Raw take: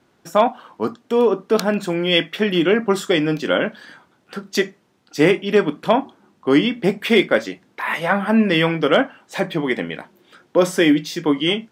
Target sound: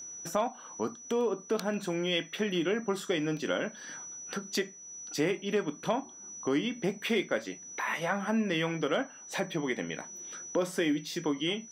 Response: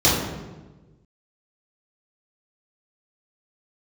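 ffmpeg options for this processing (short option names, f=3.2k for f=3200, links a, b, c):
-af "aeval=exprs='val(0)+0.0112*sin(2*PI*5900*n/s)':c=same,acompressor=threshold=-34dB:ratio=2,volume=-2dB"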